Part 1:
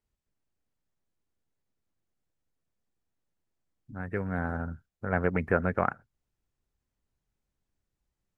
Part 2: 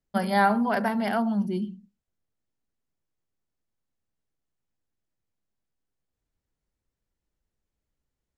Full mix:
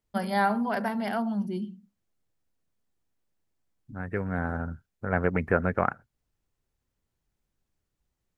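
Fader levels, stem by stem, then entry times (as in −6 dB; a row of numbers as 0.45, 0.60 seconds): +1.5, −3.5 decibels; 0.00, 0.00 seconds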